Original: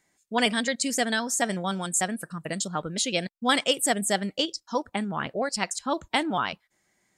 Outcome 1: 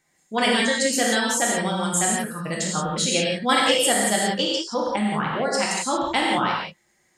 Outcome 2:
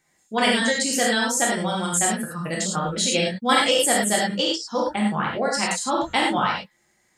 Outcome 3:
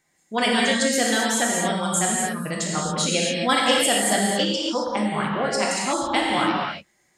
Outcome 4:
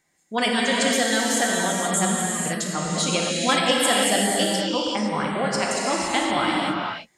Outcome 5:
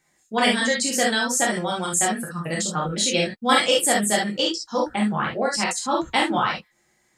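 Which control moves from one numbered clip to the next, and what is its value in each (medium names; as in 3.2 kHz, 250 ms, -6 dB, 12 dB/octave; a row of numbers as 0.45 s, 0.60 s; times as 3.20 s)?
gated-style reverb, gate: 200 ms, 130 ms, 300 ms, 540 ms, 90 ms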